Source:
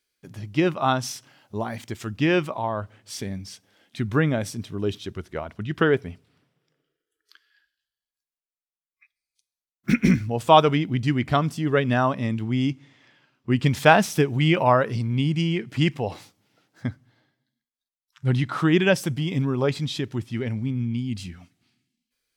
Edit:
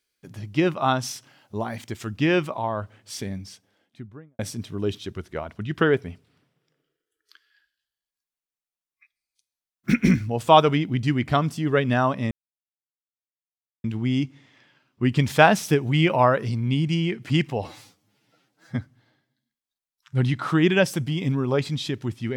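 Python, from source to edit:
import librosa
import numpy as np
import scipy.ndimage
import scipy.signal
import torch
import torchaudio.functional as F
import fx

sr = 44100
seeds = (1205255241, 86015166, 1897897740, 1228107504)

y = fx.studio_fade_out(x, sr, start_s=3.27, length_s=1.12)
y = fx.edit(y, sr, fx.insert_silence(at_s=12.31, length_s=1.53),
    fx.stretch_span(start_s=16.12, length_s=0.74, factor=1.5), tone=tone)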